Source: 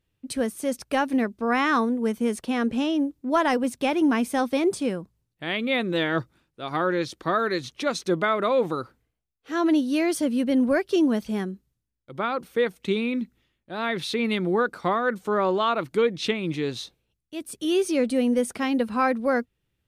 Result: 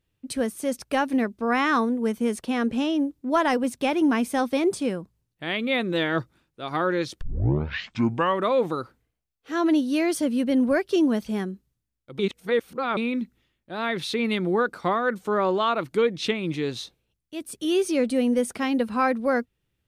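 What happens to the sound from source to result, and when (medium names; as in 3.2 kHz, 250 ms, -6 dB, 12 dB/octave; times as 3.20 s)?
7.21 s: tape start 1.27 s
12.19–12.97 s: reverse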